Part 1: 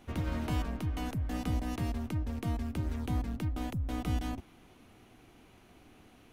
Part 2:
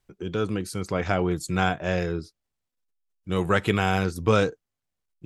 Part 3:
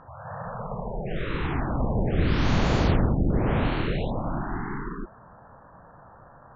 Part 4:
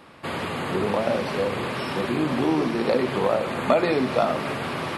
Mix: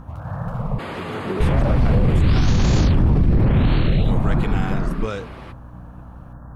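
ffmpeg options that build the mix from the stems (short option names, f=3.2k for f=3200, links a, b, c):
-filter_complex "[0:a]asoftclip=type=tanh:threshold=-38.5dB,volume=-5.5dB[a];[1:a]adelay=750,volume=-7.5dB[b];[2:a]bass=f=250:g=13,treble=f=4k:g=15,aeval=exprs='val(0)+0.01*(sin(2*PI*60*n/s)+sin(2*PI*2*60*n/s)/2+sin(2*PI*3*60*n/s)/3+sin(2*PI*4*60*n/s)/4+sin(2*PI*5*60*n/s)/5)':c=same,volume=1dB,asplit=3[c][d][e];[c]atrim=end=0.79,asetpts=PTS-STARTPTS,afade=t=out:st=0.786:d=0.004:c=hsin[f];[d]atrim=start=0.79:end=1.4,asetpts=PTS-STARTPTS,volume=0[g];[e]atrim=start=1.4,asetpts=PTS-STARTPTS,afade=t=in:d=0.004:c=hsin[h];[f][g][h]concat=n=3:v=0:a=1[i];[3:a]highshelf=f=3.9k:g=-7.5,alimiter=limit=-15.5dB:level=0:latency=1,adelay=550,volume=-0.5dB,afade=t=out:st=2.94:d=0.67:silence=0.316228[j];[a][b][i][j]amix=inputs=4:normalize=0,alimiter=limit=-9dB:level=0:latency=1:release=15"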